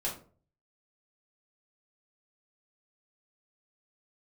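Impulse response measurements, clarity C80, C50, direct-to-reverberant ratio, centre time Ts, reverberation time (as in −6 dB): 14.0 dB, 8.5 dB, −4.5 dB, 24 ms, 0.45 s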